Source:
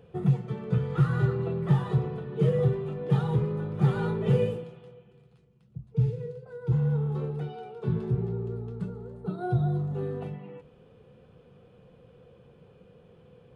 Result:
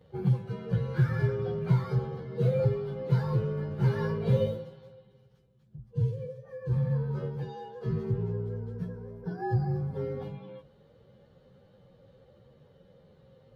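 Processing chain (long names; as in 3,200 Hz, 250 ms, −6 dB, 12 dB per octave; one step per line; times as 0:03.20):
partials spread apart or drawn together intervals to 109%
0:01.82–0:02.43: notch filter 2,500 Hz, Q 7.5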